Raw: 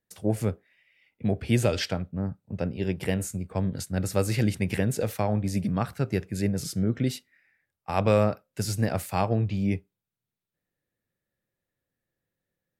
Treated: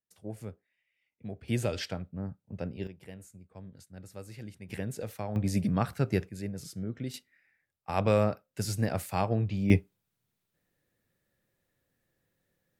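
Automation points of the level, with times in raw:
−14.5 dB
from 0:01.48 −7 dB
from 0:02.87 −19.5 dB
from 0:04.69 −10 dB
from 0:05.36 −1 dB
from 0:06.29 −10.5 dB
from 0:07.14 −3.5 dB
from 0:09.70 +7 dB

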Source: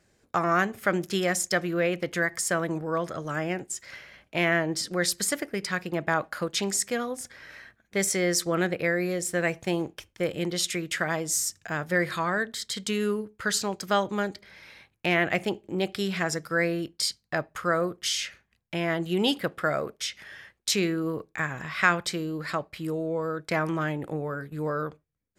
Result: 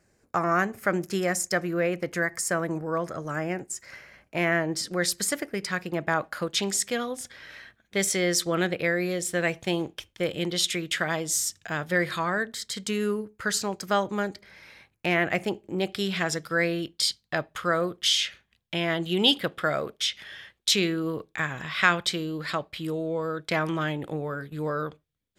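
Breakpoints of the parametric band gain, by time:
parametric band 3,400 Hz 0.59 octaves
0:04.36 −8.5 dB
0:04.87 −0.5 dB
0:06.21 −0.5 dB
0:06.79 +7 dB
0:11.97 +7 dB
0:12.44 −2.5 dB
0:15.70 −2.5 dB
0:16.28 +9.5 dB

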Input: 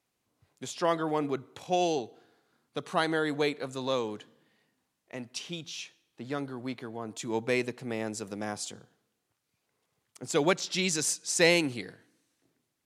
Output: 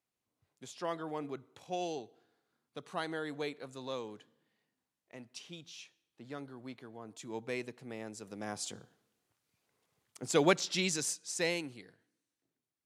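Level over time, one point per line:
0:08.20 −10 dB
0:08.73 −1 dB
0:10.60 −1 dB
0:11.79 −14 dB

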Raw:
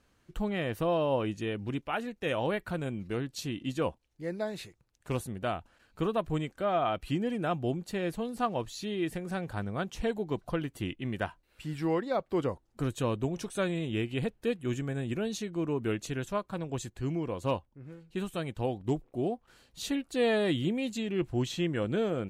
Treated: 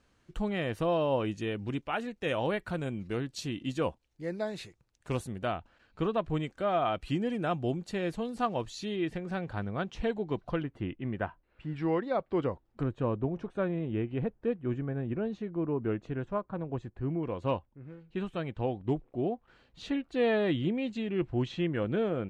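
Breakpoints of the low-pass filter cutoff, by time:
8,700 Hz
from 0:05.46 4,600 Hz
from 0:06.43 7,600 Hz
from 0:08.96 4,100 Hz
from 0:10.63 1,800 Hz
from 0:11.76 3,100 Hz
from 0:12.83 1,400 Hz
from 0:17.23 2,900 Hz

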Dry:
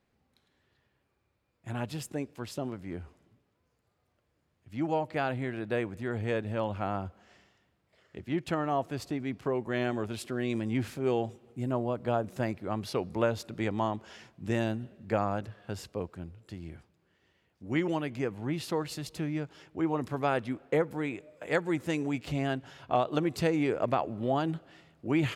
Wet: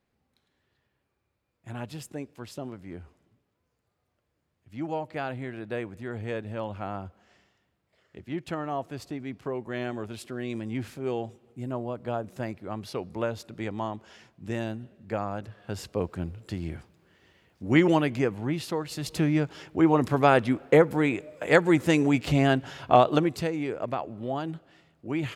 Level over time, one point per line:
0:15.32 −2 dB
0:16.20 +9 dB
0:17.99 +9 dB
0:18.86 0 dB
0:19.14 +9 dB
0:23.07 +9 dB
0:23.50 −2.5 dB

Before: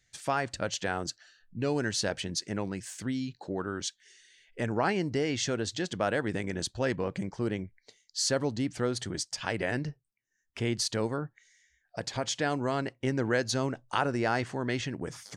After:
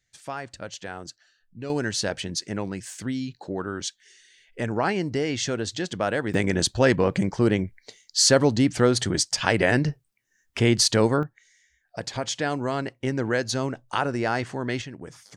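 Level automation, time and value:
−4.5 dB
from 0:01.70 +3.5 dB
from 0:06.34 +10.5 dB
from 0:11.23 +3 dB
from 0:14.82 −3.5 dB

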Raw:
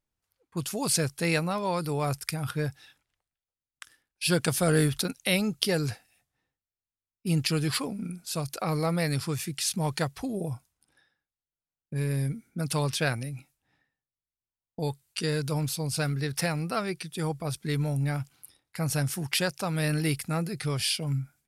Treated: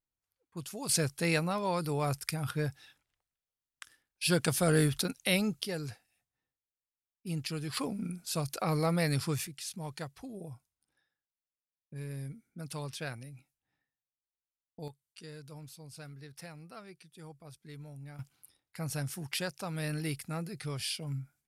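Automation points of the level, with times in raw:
−9.5 dB
from 0:00.89 −3 dB
from 0:05.61 −10 dB
from 0:07.77 −2 dB
from 0:09.47 −12 dB
from 0:14.88 −19 dB
from 0:18.19 −8 dB

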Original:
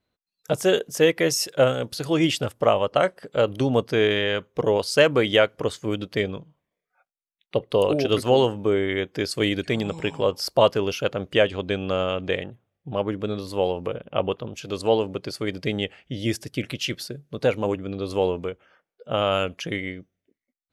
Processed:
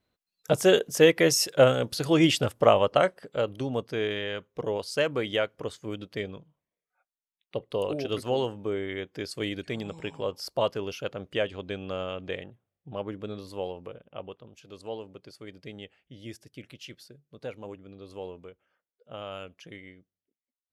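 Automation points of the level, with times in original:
0:02.85 0 dB
0:03.60 −9 dB
0:13.45 −9 dB
0:14.28 −16.5 dB

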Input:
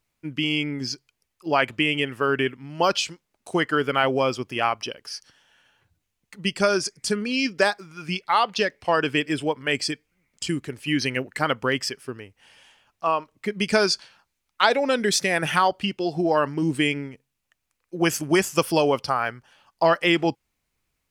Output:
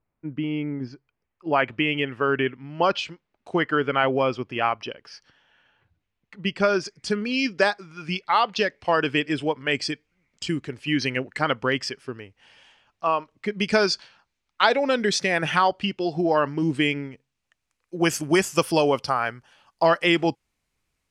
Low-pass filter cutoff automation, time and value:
0:00.74 1,200 Hz
0:01.91 3,100 Hz
0:06.51 3,100 Hz
0:07.39 5,700 Hz
0:17.06 5,700 Hz
0:18.01 11,000 Hz

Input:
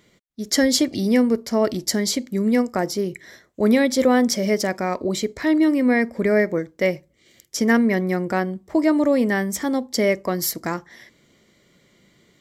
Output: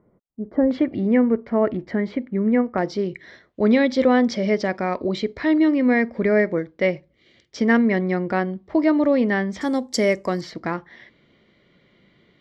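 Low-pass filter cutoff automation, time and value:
low-pass filter 24 dB per octave
1,100 Hz
from 0:00.71 2,200 Hz
from 0:02.78 4,200 Hz
from 0:09.61 9,800 Hz
from 0:10.41 3,800 Hz

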